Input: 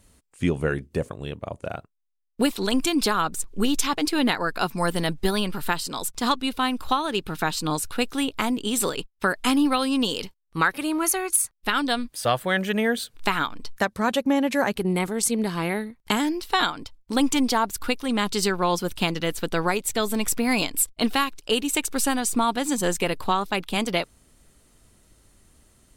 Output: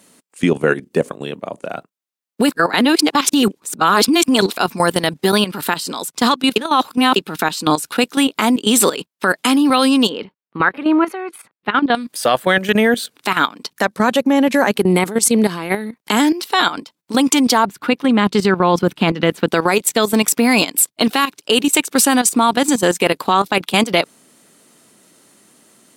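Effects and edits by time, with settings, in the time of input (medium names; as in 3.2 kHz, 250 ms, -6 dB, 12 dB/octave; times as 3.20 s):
2.51–4.57 s: reverse
6.56–7.16 s: reverse
10.09–11.95 s: distance through air 450 m
17.65–19.48 s: tone controls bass +6 dB, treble -13 dB
whole clip: high-pass 180 Hz 24 dB/octave; level held to a coarse grid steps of 13 dB; loudness maximiser +14.5 dB; trim -1 dB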